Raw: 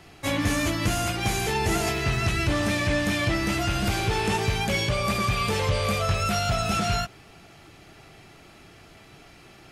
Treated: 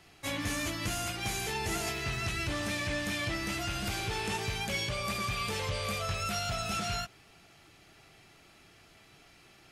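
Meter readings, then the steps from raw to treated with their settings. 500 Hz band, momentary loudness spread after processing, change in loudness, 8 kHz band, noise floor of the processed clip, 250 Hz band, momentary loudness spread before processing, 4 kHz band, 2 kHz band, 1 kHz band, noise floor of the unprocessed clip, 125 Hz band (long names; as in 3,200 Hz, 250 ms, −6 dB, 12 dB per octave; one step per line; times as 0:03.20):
−10.0 dB, 1 LU, −8.0 dB, −5.0 dB, −59 dBFS, −11.0 dB, 1 LU, −5.5 dB, −7.0 dB, −9.0 dB, −51 dBFS, −11.0 dB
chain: tilt shelving filter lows −3 dB, about 1,400 Hz
level −8 dB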